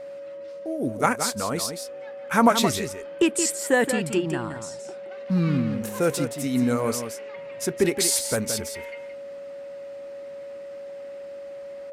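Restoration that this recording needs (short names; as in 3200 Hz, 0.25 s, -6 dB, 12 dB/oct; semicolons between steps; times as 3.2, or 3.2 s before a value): notch 560 Hz, Q 30; inverse comb 0.172 s -8.5 dB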